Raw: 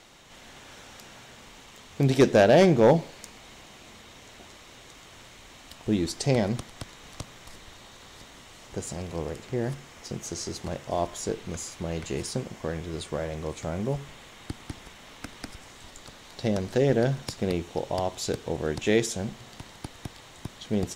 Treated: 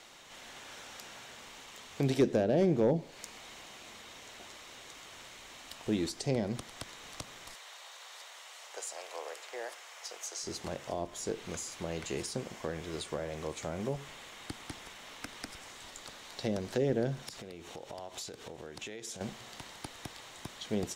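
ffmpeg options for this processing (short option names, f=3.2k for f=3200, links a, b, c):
-filter_complex "[0:a]asplit=3[a][b][c];[a]afade=t=out:st=7.53:d=0.02[d];[b]highpass=f=550:w=0.5412,highpass=f=550:w=1.3066,afade=t=in:st=7.53:d=0.02,afade=t=out:st=10.42:d=0.02[e];[c]afade=t=in:st=10.42:d=0.02[f];[d][e][f]amix=inputs=3:normalize=0,asettb=1/sr,asplit=3[g][h][i];[g]atrim=end=17.224[j];[h]atrim=start=17.22:end=19.21,asetpts=PTS-STARTPTS,afade=t=in:d=0.004:c=qsin,afade=t=out:st=1.986:d=0.004:c=qsin,acompressor=threshold=-36dB:ratio=20:attack=3.2:release=140:knee=1:detection=peak[k];[i]atrim=start=19.206[l];[j][k]acrossfade=d=0.004:c1=hsin:c2=qsin[m];[m][l]acrossfade=d=0.004:c1=qsin:c2=hsin,lowshelf=f=280:g=-11,acrossover=split=430[n][o];[o]acompressor=threshold=-37dB:ratio=10[p];[n][p]amix=inputs=2:normalize=0"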